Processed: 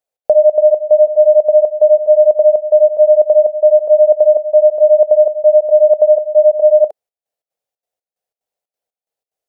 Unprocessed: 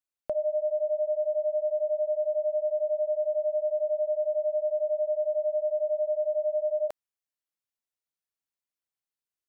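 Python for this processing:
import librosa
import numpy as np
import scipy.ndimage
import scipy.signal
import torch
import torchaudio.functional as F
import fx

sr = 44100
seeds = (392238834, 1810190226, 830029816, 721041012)

y = fx.band_shelf(x, sr, hz=590.0, db=15.0, octaves=1.1)
y = fx.step_gate(y, sr, bpm=182, pattern='xx.xxx.xx..', floor_db=-12.0, edge_ms=4.5)
y = y * librosa.db_to_amplitude(4.5)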